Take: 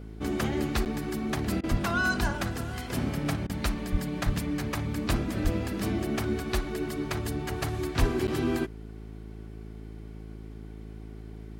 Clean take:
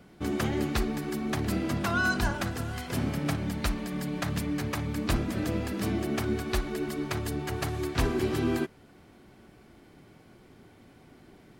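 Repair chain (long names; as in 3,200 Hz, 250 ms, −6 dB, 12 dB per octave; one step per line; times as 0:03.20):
hum removal 54 Hz, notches 8
high-pass at the plosives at 0:01.70/0:03.91/0:04.25/0:05.43/0:07.99
repair the gap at 0:00.85/0:08.27, 9 ms
repair the gap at 0:01.61/0:03.47, 24 ms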